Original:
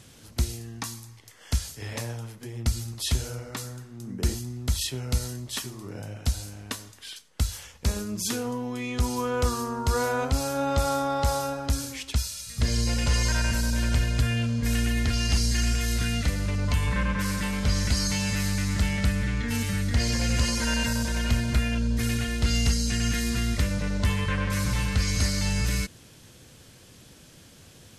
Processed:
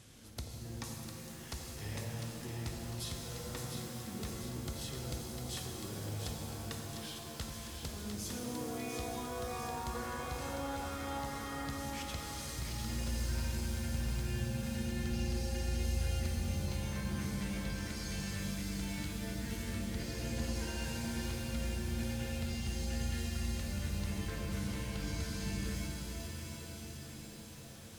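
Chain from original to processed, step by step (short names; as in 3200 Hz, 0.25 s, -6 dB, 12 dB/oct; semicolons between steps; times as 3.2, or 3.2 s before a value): compressor, threshold -34 dBFS, peak gain reduction 15 dB; on a send: split-band echo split 780 Hz, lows 86 ms, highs 0.701 s, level -6 dB; on the sum: shimmer reverb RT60 3.8 s, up +7 st, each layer -2 dB, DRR 2.5 dB; gain -7.5 dB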